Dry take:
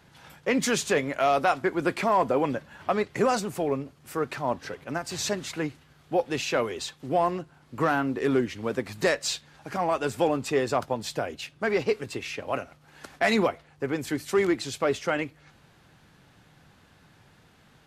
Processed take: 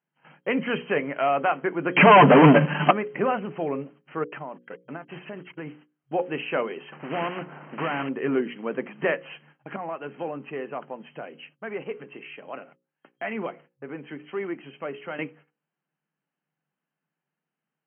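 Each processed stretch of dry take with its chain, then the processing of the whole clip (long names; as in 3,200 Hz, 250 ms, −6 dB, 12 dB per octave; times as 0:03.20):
0:01.96–0:02.91: bass and treble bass +10 dB, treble +13 dB + comb filter 6.8 ms, depth 77% + leveller curve on the samples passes 5
0:04.24–0:05.67: noise gate −37 dBFS, range −39 dB + downward compressor 20 to 1, threshold −30 dBFS
0:06.92–0:08.09: variable-slope delta modulation 16 kbit/s + low-pass filter 1,000 Hz 6 dB per octave + every bin compressed towards the loudest bin 2 to 1
0:09.76–0:15.19: downward compressor 1.5 to 1, threshold −41 dBFS + multiband upward and downward expander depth 40%
whole clip: noise gate −49 dBFS, range −28 dB; mains-hum notches 60/120/180/240/300/360/420/480/540 Hz; brick-wall band-pass 130–3,200 Hz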